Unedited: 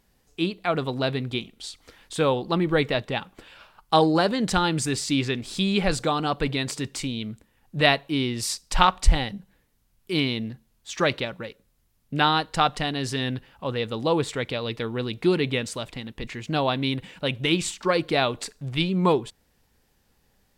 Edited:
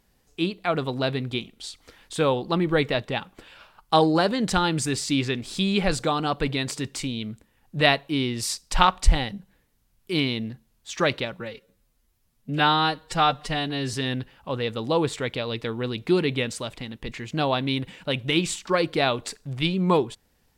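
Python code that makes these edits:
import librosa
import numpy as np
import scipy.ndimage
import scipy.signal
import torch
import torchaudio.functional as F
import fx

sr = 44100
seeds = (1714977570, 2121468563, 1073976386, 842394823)

y = fx.edit(x, sr, fx.stretch_span(start_s=11.4, length_s=1.69, factor=1.5), tone=tone)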